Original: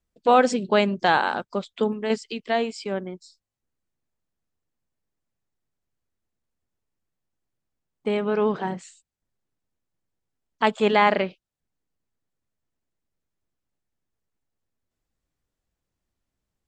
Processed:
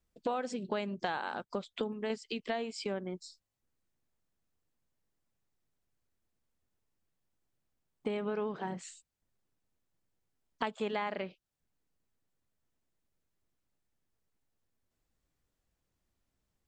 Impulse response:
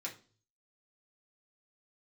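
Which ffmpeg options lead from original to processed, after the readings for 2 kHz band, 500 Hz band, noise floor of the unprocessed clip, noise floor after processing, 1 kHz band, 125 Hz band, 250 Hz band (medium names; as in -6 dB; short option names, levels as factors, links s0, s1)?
-15.0 dB, -13.5 dB, -84 dBFS, -84 dBFS, -16.0 dB, -11.5 dB, -12.5 dB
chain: -af "acompressor=threshold=0.0224:ratio=6"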